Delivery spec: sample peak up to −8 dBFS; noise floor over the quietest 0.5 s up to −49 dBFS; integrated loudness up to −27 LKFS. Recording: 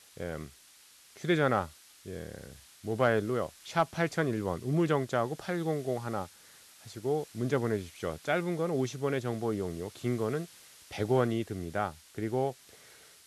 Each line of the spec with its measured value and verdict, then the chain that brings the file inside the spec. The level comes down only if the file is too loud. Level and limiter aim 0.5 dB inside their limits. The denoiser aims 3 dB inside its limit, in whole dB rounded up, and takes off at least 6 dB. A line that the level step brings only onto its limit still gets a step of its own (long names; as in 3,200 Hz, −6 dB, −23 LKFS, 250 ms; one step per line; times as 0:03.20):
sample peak −14.0 dBFS: in spec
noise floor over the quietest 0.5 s −58 dBFS: in spec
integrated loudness −32.0 LKFS: in spec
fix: no processing needed